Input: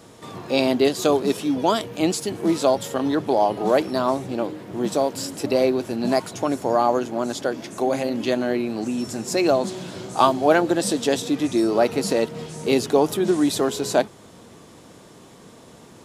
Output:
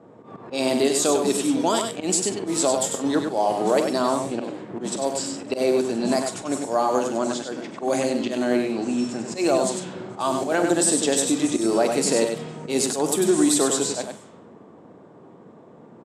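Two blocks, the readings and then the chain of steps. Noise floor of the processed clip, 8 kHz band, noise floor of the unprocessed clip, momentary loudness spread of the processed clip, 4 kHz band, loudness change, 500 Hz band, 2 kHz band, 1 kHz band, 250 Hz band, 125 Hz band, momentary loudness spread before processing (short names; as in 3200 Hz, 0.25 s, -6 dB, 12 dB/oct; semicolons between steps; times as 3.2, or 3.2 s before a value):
-48 dBFS, +8.5 dB, -47 dBFS, 10 LU, +0.5 dB, -0.5 dB, -2.0 dB, -2.0 dB, -3.0 dB, -1.0 dB, -3.5 dB, 9 LU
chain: low-pass opened by the level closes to 890 Hz, open at -17 dBFS; HPF 150 Hz 12 dB/oct; bell 8100 Hz +14.5 dB 0.59 oct; limiter -11 dBFS, peak gain reduction 9 dB; auto swell 0.108 s; doubler 44 ms -13.5 dB; echo 98 ms -5.5 dB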